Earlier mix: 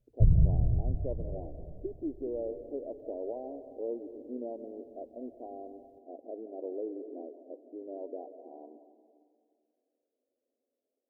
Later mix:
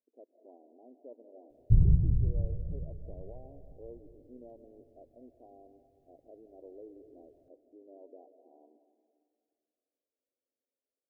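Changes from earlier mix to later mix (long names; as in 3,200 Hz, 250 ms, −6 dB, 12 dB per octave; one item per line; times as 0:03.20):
speech −12.0 dB
background: entry +1.50 s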